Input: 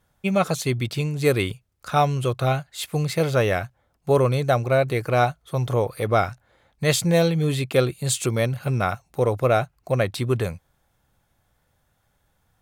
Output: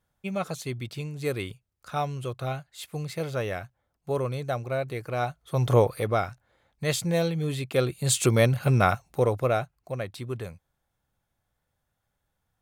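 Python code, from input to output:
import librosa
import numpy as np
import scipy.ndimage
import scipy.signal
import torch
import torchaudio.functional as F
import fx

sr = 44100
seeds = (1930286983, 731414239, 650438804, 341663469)

y = fx.gain(x, sr, db=fx.line((5.19, -9.5), (5.77, 3.0), (6.2, -6.5), (7.68, -6.5), (8.27, 2.0), (8.91, 2.0), (9.97, -11.0)))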